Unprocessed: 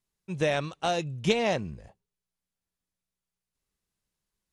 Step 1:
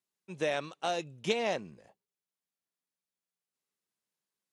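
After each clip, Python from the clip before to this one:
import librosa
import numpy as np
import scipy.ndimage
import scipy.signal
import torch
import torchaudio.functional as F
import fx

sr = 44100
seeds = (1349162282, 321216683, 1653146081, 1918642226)

y = scipy.signal.sosfilt(scipy.signal.butter(2, 240.0, 'highpass', fs=sr, output='sos'), x)
y = y * librosa.db_to_amplitude(-4.5)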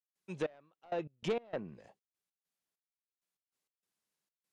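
y = fx.env_lowpass_down(x, sr, base_hz=1600.0, full_db=-32.5)
y = 10.0 ** (-27.5 / 20.0) * np.tanh(y / 10.0 ** (-27.5 / 20.0))
y = fx.step_gate(y, sr, bpm=98, pattern='.xx...x.x.xxx.x', floor_db=-24.0, edge_ms=4.5)
y = y * librosa.db_to_amplitude(1.0)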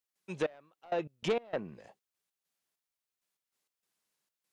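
y = fx.low_shelf(x, sr, hz=340.0, db=-4.5)
y = y * librosa.db_to_amplitude(5.0)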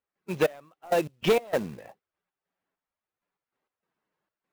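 y = fx.spec_quant(x, sr, step_db=15)
y = fx.env_lowpass(y, sr, base_hz=1500.0, full_db=-30.5)
y = fx.quant_float(y, sr, bits=2)
y = y * librosa.db_to_amplitude(9.0)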